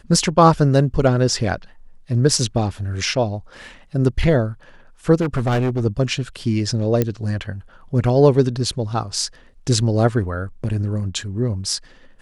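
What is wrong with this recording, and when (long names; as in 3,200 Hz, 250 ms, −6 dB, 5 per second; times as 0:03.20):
0:05.20–0:05.86: clipping −15.5 dBFS
0:07.02: click −6 dBFS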